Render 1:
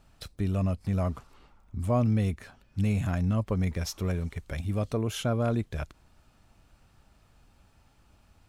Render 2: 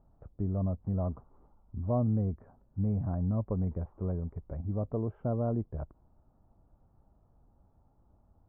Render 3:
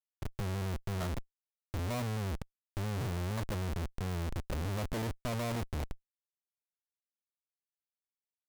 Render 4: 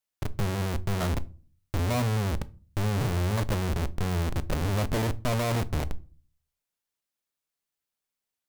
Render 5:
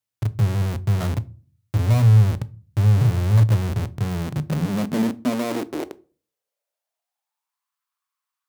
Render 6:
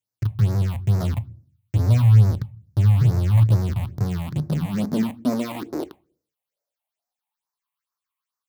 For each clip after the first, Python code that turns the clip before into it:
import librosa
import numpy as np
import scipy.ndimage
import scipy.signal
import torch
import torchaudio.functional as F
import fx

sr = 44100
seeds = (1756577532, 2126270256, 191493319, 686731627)

y1 = scipy.signal.sosfilt(scipy.signal.cheby2(4, 70, 4200.0, 'lowpass', fs=sr, output='sos'), x)
y1 = y1 * 10.0 ** (-3.5 / 20.0)
y2 = fx.schmitt(y1, sr, flips_db=-45.0)
y3 = fx.room_shoebox(y2, sr, seeds[0], volume_m3=230.0, walls='furnished', distance_m=0.32)
y3 = y3 * 10.0 ** (8.0 / 20.0)
y4 = fx.filter_sweep_highpass(y3, sr, from_hz=110.0, to_hz=1100.0, start_s=3.93, end_s=7.76, q=6.1)
y5 = fx.phaser_stages(y4, sr, stages=6, low_hz=370.0, high_hz=3100.0, hz=2.3, feedback_pct=20)